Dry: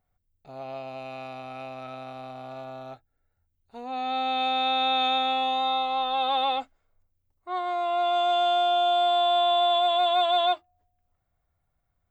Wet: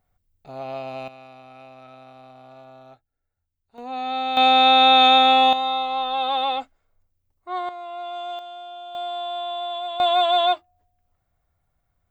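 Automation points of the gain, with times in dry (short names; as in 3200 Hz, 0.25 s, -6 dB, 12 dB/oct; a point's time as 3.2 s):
+5 dB
from 1.08 s -6.5 dB
from 3.78 s +2 dB
from 4.37 s +10.5 dB
from 5.53 s +2 dB
from 7.69 s -8 dB
from 8.39 s -15 dB
from 8.95 s -7 dB
from 10 s +4 dB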